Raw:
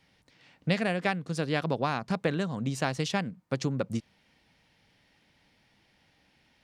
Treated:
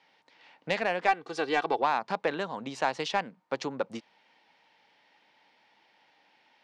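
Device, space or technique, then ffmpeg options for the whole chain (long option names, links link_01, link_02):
intercom: -filter_complex "[0:a]highpass=410,lowpass=4400,equalizer=frequency=890:width_type=o:width=0.32:gain=8,asoftclip=type=tanh:threshold=-15.5dB,asettb=1/sr,asplit=3[link_01][link_02][link_03];[link_01]atrim=end=1.084[link_04];[link_02]atrim=start=1.08:end=1.82,asetpts=PTS-STARTPTS,afade=type=in:duration=0.004:curve=qsin,afade=type=out:start_time=0.736:duration=0.004:curve=qsin,aecho=1:1:2.6:0.73,atrim=end_sample=32634[link_05];[link_03]atrim=start=1.816[link_06];[link_04][link_05]acrossfade=duration=0.004:curve1=hsin:curve2=qsin[link_07];[link_07][link_06]acrossfade=duration=0.004:curve1=qsin:curve2=hsin,volume=2.5dB"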